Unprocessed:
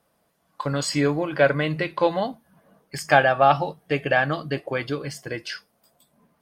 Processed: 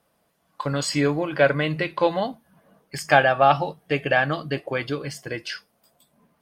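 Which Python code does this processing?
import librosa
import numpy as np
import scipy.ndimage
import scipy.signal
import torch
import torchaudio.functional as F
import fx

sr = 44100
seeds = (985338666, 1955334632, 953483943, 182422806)

y = fx.peak_eq(x, sr, hz=2800.0, db=2.0, octaves=0.77)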